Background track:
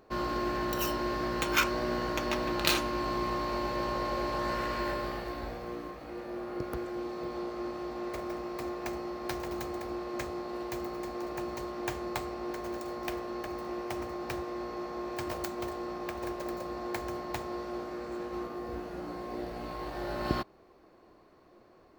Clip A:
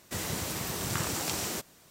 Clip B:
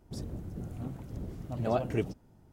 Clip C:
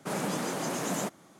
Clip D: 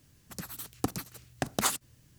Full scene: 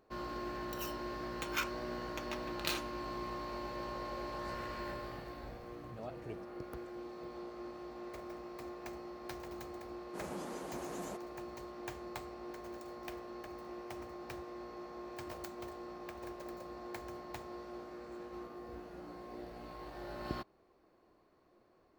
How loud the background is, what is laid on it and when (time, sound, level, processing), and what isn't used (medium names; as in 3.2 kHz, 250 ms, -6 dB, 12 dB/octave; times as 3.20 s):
background track -9.5 dB
4.32 s: add B -16.5 dB
10.08 s: add C -16.5 dB, fades 0.10 s + peaking EQ 520 Hz +5.5 dB 2.5 oct
not used: A, D